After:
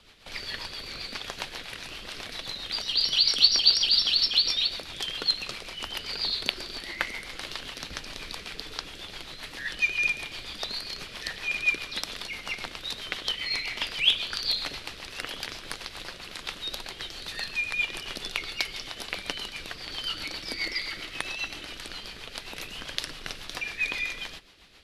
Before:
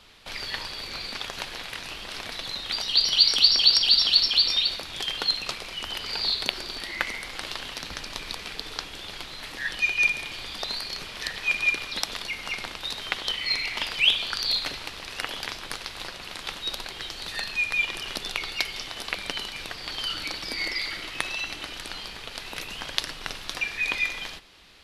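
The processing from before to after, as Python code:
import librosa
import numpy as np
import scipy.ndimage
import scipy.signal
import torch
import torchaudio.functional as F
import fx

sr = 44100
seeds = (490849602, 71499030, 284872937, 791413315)

y = fx.rotary(x, sr, hz=7.5)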